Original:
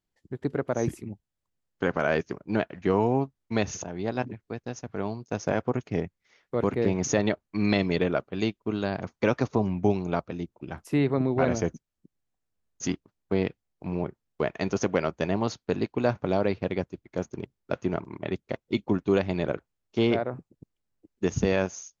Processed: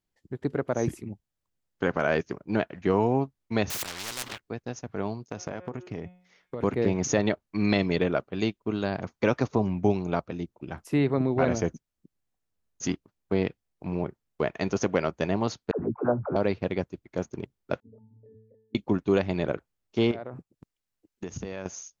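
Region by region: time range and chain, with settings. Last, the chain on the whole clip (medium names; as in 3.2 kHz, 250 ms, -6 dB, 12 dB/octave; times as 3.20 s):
3.70–4.40 s: waveshaping leveller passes 3 + spectrum-flattening compressor 10:1
5.28–6.61 s: de-hum 180.5 Hz, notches 20 + compression 10:1, threshold -29 dBFS
15.71–16.36 s: elliptic low-pass 1.4 kHz, stop band 70 dB + phase dispersion lows, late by 86 ms, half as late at 450 Hz
17.80–18.75 s: resonances exaggerated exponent 3 + pitch-class resonator A, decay 0.73 s
20.11–21.66 s: gate -47 dBFS, range -8 dB + compression 4:1, threshold -33 dBFS + tape noise reduction on one side only encoder only
whole clip: none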